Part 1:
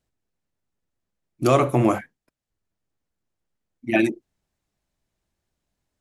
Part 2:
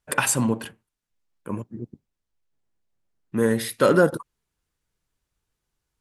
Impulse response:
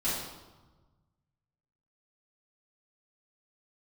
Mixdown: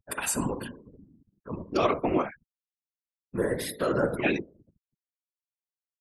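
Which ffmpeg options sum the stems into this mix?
-filter_complex "[0:a]highpass=240,highshelf=frequency=6200:width_type=q:width=3:gain=-7,adelay=300,volume=0.5dB[link_01];[1:a]lowshelf=frequency=140:gain=-6.5,alimiter=limit=-12.5dB:level=0:latency=1:release=137,aeval=exprs='val(0)+0.00141*(sin(2*PI*50*n/s)+sin(2*PI*2*50*n/s)/2+sin(2*PI*3*50*n/s)/3+sin(2*PI*4*50*n/s)/4+sin(2*PI*5*50*n/s)/5)':channel_layout=same,volume=1dB,asplit=2[link_02][link_03];[link_03]volume=-16dB[link_04];[2:a]atrim=start_sample=2205[link_05];[link_04][link_05]afir=irnorm=-1:irlink=0[link_06];[link_01][link_02][link_06]amix=inputs=3:normalize=0,afftfilt=real='re*gte(hypot(re,im),0.0158)':imag='im*gte(hypot(re,im),0.0158)':win_size=1024:overlap=0.75,afftfilt=real='hypot(re,im)*cos(2*PI*random(0))':imag='hypot(re,im)*sin(2*PI*random(1))':win_size=512:overlap=0.75"

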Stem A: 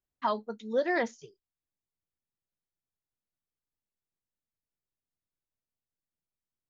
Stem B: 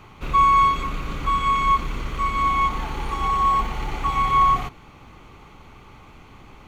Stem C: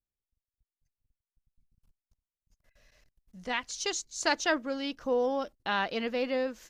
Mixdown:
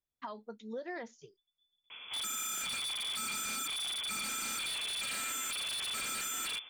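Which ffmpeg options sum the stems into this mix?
ffmpeg -i stem1.wav -i stem2.wav -i stem3.wav -filter_complex "[0:a]acompressor=threshold=-32dB:ratio=5,volume=-4.5dB[link_01];[1:a]adelay=1900,volume=-2.5dB[link_02];[2:a]alimiter=limit=-21dB:level=0:latency=1,volume=-11dB[link_03];[link_02][link_03]amix=inputs=2:normalize=0,lowpass=frequency=3000:width_type=q:width=0.5098,lowpass=frequency=3000:width_type=q:width=0.6013,lowpass=frequency=3000:width_type=q:width=0.9,lowpass=frequency=3000:width_type=q:width=2.563,afreqshift=-3500,alimiter=limit=-18dB:level=0:latency=1:release=23,volume=0dB[link_04];[link_01][link_04]amix=inputs=2:normalize=0,aeval=exprs='0.0376*(abs(mod(val(0)/0.0376+3,4)-2)-1)':channel_layout=same,alimiter=level_in=8.5dB:limit=-24dB:level=0:latency=1:release=260,volume=-8.5dB" out.wav

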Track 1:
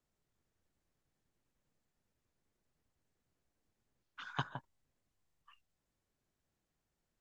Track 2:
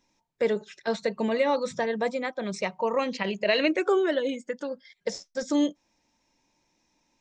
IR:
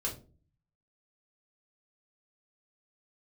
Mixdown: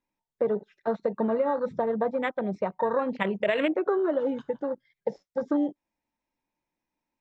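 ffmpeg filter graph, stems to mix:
-filter_complex "[0:a]volume=-19.5dB,asplit=2[link_01][link_02];[link_02]volume=-12.5dB[link_03];[1:a]lowpass=1800,acompressor=threshold=-24dB:ratio=12,afwtdn=0.0178,volume=2.5dB[link_04];[2:a]atrim=start_sample=2205[link_05];[link_03][link_05]afir=irnorm=-1:irlink=0[link_06];[link_01][link_04][link_06]amix=inputs=3:normalize=0,highshelf=frequency=2100:gain=9.5"

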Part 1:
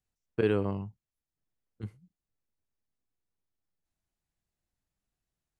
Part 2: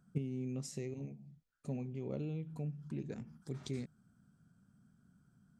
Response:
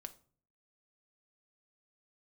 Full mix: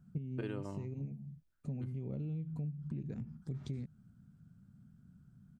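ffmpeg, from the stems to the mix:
-filter_complex "[0:a]aecho=1:1:3.3:0.5,volume=-3dB[link_01];[1:a]bass=frequency=250:gain=13,treble=frequency=4000:gain=-8,highshelf=frequency=8200:gain=3.5,volume=-3dB[link_02];[link_01][link_02]amix=inputs=2:normalize=0,acompressor=threshold=-37dB:ratio=5"

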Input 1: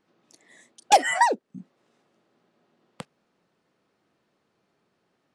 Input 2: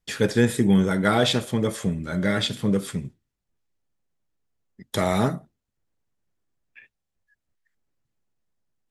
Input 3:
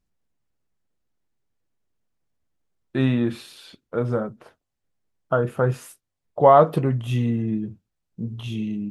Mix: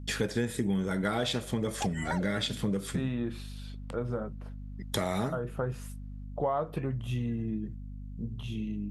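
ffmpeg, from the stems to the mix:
ffmpeg -i stem1.wav -i stem2.wav -i stem3.wav -filter_complex "[0:a]acompressor=threshold=-22dB:ratio=6,adelay=900,volume=-8.5dB[link_01];[1:a]volume=0dB[link_02];[2:a]volume=-7.5dB[link_03];[link_01][link_02][link_03]amix=inputs=3:normalize=0,aeval=exprs='val(0)+0.01*(sin(2*PI*50*n/s)+sin(2*PI*2*50*n/s)/2+sin(2*PI*3*50*n/s)/3+sin(2*PI*4*50*n/s)/4+sin(2*PI*5*50*n/s)/5)':channel_layout=same,acompressor=threshold=-28dB:ratio=4" out.wav

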